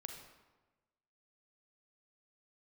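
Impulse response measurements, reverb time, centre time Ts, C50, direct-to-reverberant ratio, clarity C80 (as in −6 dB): 1.2 s, 35 ms, 4.5 dB, 3.5 dB, 7.0 dB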